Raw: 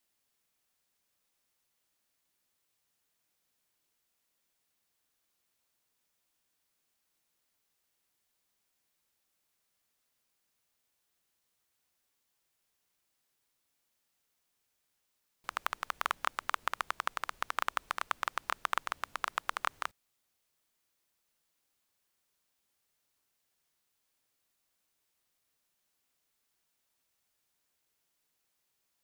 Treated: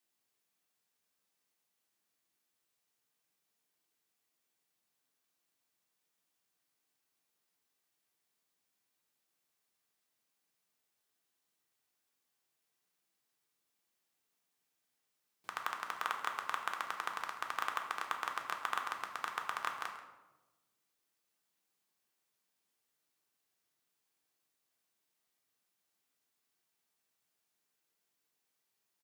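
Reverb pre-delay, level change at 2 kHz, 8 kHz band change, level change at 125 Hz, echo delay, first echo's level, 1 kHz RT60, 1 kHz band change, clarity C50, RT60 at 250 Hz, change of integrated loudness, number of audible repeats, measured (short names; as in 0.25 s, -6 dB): 3 ms, -2.5 dB, -3.5 dB, n/a, 0.135 s, -15.0 dB, 1.0 s, -2.5 dB, 6.5 dB, 1.5 s, -3.0 dB, 1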